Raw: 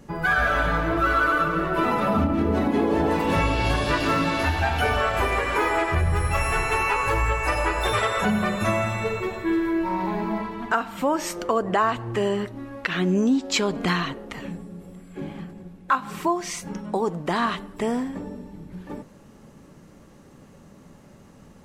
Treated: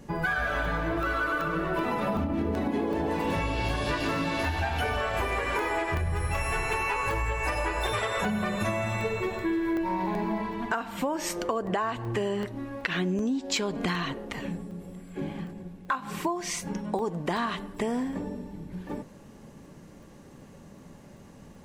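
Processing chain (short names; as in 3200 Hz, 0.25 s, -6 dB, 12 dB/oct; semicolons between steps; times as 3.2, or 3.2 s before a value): notch 1300 Hz, Q 11; compressor, threshold -25 dBFS, peak gain reduction 8.5 dB; crackling interface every 0.38 s, samples 64, zero, from 0.65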